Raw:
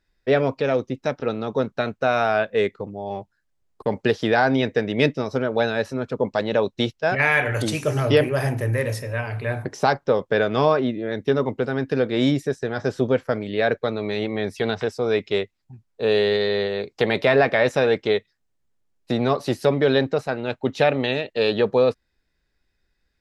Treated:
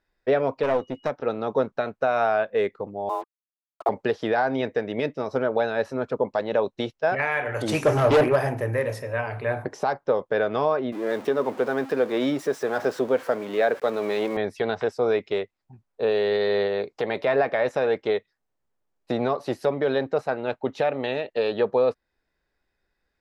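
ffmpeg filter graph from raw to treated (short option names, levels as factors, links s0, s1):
-filter_complex "[0:a]asettb=1/sr,asplit=3[s0][s1][s2];[s0]atrim=end=0.634[s3];[s1]atrim=start=0.63:end=1.1,asetpts=PTS-STARTPTS,afade=t=in:d=0.004:c=qsin,afade=t=out:st=0.466:d=0.004:c=qsin,aeval=exprs='clip(val(0),-1,0.0531)':c=same,aeval=exprs='val(0)+0.00224*sin(2*PI*2900*n/s)':c=same,asplit=2[s4][s5];[s5]adelay=12,volume=0.237[s6];[s4][s6]amix=inputs=2:normalize=0,atrim=end_sample=20727[s7];[s2]atrim=start=1.096[s8];[s3][s7]acrossfade=d=0.004:c1=hsin:c2=qsin[s9];[s9][s8]acrossfade=d=0.004:c1=qsin:c2=hsin,asettb=1/sr,asplit=3[s10][s11][s12];[s10]atrim=end=3.094[s13];[s11]atrim=start=3.09:end=3.89,asetpts=PTS-STARTPTS,afade=t=in:d=0.004:c=qsin,afade=t=out:st=0.796:d=0.004:c=qsin,afreqshift=230,acrusher=bits=6:mix=0:aa=0.5,bandreject=f=1200:w=21[s14];[s12]atrim=start=3.886[s15];[s13][s14]acrossfade=d=0.004:c1=hsin:c2=qsin[s16];[s16][s15]acrossfade=d=0.004:c1=qsin:c2=hsin,asettb=1/sr,asplit=3[s17][s18][s19];[s17]atrim=end=7.694[s20];[s18]atrim=start=7.69:end=8.36,asetpts=PTS-STARTPTS,afade=t=in:d=0.004:c=qsin,afade=t=out:st=0.666:d=0.004:c=qsin,acontrast=28,asoftclip=type=hard:threshold=0.188[s21];[s19]atrim=start=8.356[s22];[s20][s21]acrossfade=d=0.004:c1=hsin:c2=qsin[s23];[s23][s22]acrossfade=d=0.004:c1=qsin:c2=hsin,asettb=1/sr,asplit=3[s24][s25][s26];[s24]atrim=end=10.924[s27];[s25]atrim=start=10.92:end=14.37,asetpts=PTS-STARTPTS,afade=t=in:d=0.004:c=qsin,afade=t=out:st=3.446:d=0.004:c=qsin,aeval=exprs='val(0)+0.5*0.0237*sgn(val(0))':c=same,highpass=200[s28];[s26]atrim=start=14.366[s29];[s27][s28]acrossfade=d=0.004:c1=hsin:c2=qsin[s30];[s30][s29]acrossfade=d=0.004:c1=qsin:c2=hsin,alimiter=limit=0.237:level=0:latency=1:release=376,equalizer=f=770:t=o:w=2.8:g=10.5,volume=0.422"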